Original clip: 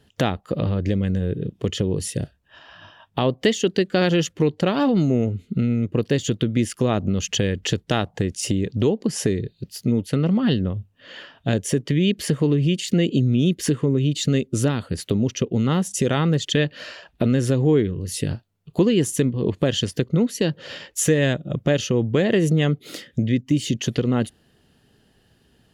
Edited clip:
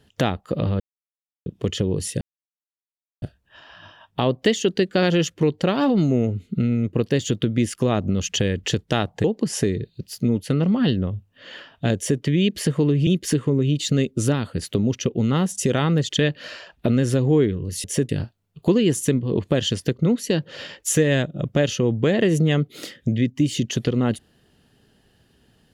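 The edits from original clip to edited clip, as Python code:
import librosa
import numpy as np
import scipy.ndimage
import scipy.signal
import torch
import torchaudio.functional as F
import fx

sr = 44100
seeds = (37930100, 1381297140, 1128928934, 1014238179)

y = fx.edit(x, sr, fx.silence(start_s=0.8, length_s=0.66),
    fx.insert_silence(at_s=2.21, length_s=1.01),
    fx.cut(start_s=8.23, length_s=0.64),
    fx.duplicate(start_s=11.59, length_s=0.25, to_s=18.2),
    fx.cut(start_s=12.7, length_s=0.73), tone=tone)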